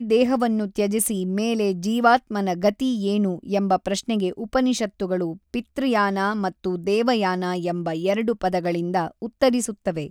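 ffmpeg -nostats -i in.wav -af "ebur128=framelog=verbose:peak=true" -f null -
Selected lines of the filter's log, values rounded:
Integrated loudness:
  I:         -22.8 LUFS
  Threshold: -32.8 LUFS
Loudness range:
  LRA:         2.0 LU
  Threshold: -43.0 LUFS
  LRA low:   -23.9 LUFS
  LRA high:  -21.8 LUFS
True peak:
  Peak:       -4.3 dBFS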